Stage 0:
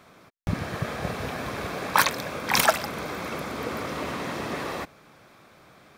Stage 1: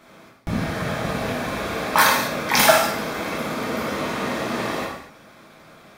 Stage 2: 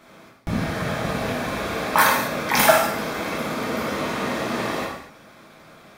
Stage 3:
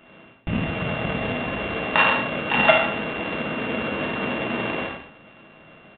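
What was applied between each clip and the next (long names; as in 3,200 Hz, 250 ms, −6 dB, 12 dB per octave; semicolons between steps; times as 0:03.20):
reverb whose tail is shaped and stops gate 280 ms falling, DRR −4.5 dB
dynamic equaliser 4,700 Hz, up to −5 dB, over −32 dBFS, Q 0.86
samples sorted by size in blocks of 16 samples; downsampling to 8,000 Hz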